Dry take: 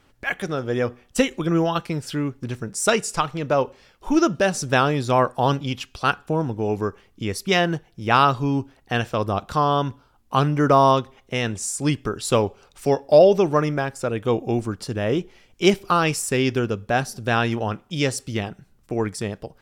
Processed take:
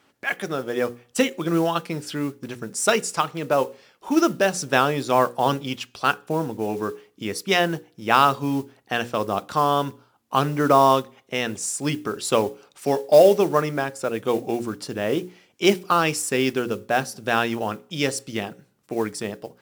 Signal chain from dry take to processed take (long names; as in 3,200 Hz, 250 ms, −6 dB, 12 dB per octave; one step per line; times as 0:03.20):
high-pass filter 180 Hz 12 dB per octave
mains-hum notches 60/120/180/240/300/360/420/480/540 Hz
noise that follows the level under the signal 24 dB